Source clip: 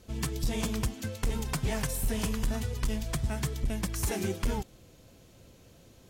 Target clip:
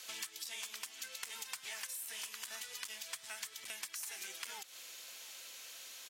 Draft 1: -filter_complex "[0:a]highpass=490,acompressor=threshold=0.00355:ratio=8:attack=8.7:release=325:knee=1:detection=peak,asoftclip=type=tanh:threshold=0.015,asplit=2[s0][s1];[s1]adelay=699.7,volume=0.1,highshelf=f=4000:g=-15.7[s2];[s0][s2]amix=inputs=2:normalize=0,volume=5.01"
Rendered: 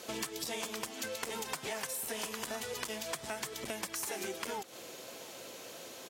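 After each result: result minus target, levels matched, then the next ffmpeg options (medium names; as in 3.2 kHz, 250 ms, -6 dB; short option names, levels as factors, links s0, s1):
500 Hz band +15.5 dB; compression: peak gain reduction -4 dB
-filter_complex "[0:a]highpass=1800,acompressor=threshold=0.00355:ratio=8:attack=8.7:release=325:knee=1:detection=peak,asoftclip=type=tanh:threshold=0.015,asplit=2[s0][s1];[s1]adelay=699.7,volume=0.1,highshelf=f=4000:g=-15.7[s2];[s0][s2]amix=inputs=2:normalize=0,volume=5.01"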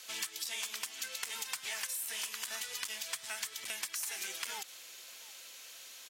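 compression: peak gain reduction -5.5 dB
-filter_complex "[0:a]highpass=1800,acompressor=threshold=0.00168:ratio=8:attack=8.7:release=325:knee=1:detection=peak,asoftclip=type=tanh:threshold=0.015,asplit=2[s0][s1];[s1]adelay=699.7,volume=0.1,highshelf=f=4000:g=-15.7[s2];[s0][s2]amix=inputs=2:normalize=0,volume=5.01"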